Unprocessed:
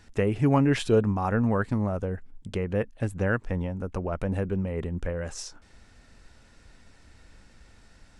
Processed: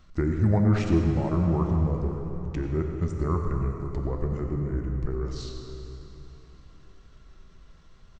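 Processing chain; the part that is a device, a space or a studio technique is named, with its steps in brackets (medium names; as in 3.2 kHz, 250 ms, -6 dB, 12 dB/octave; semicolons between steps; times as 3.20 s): monster voice (pitch shift -5 st; bass shelf 210 Hz +7 dB; reverberation RT60 1.1 s, pre-delay 83 ms, DRR 9 dB); plate-style reverb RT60 3.9 s, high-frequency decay 0.75×, DRR 4 dB; trim -5 dB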